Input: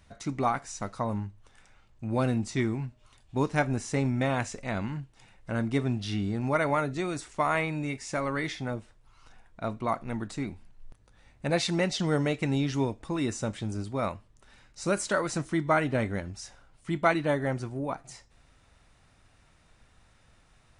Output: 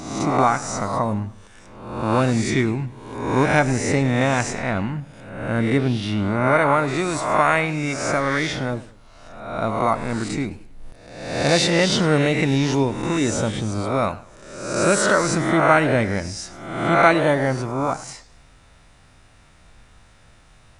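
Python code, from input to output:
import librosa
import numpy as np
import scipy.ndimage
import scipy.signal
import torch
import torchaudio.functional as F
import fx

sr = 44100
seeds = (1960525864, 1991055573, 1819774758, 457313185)

y = fx.spec_swells(x, sr, rise_s=0.93)
y = fx.peak_eq(y, sr, hz=5900.0, db=-7.5, octaves=1.3, at=(4.59, 6.88))
y = fx.echo_warbled(y, sr, ms=102, feedback_pct=35, rate_hz=2.8, cents=207, wet_db=-17.5)
y = y * 10.0 ** (7.0 / 20.0)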